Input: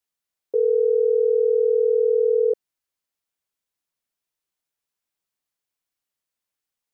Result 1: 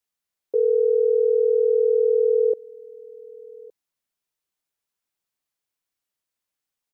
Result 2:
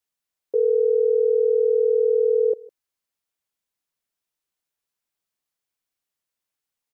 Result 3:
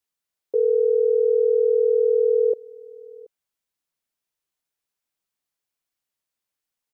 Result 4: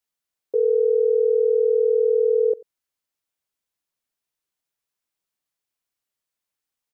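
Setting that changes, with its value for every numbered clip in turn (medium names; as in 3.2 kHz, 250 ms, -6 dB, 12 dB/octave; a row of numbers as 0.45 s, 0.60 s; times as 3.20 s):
delay, time: 1164 ms, 155 ms, 729 ms, 91 ms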